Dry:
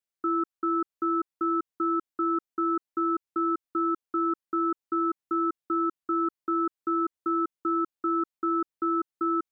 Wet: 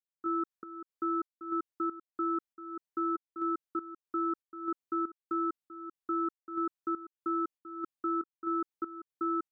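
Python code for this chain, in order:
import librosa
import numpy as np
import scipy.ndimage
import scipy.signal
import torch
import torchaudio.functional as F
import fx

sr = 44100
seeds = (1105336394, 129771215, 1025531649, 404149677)

y = fx.volume_shaper(x, sr, bpm=95, per_beat=1, depth_db=-16, release_ms=255.0, shape='slow start')
y = F.gain(torch.from_numpy(y), -5.0).numpy()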